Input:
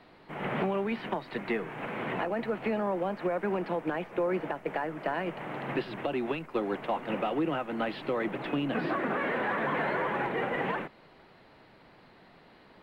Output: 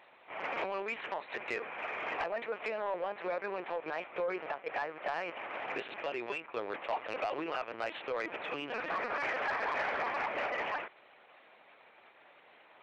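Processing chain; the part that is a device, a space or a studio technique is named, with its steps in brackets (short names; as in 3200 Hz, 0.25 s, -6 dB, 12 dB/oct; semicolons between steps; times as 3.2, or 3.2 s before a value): talking toy (LPC vocoder at 8 kHz pitch kept; HPF 530 Hz 12 dB/oct; bell 2400 Hz +7 dB 0.21 oct; soft clip -25.5 dBFS, distortion -18 dB)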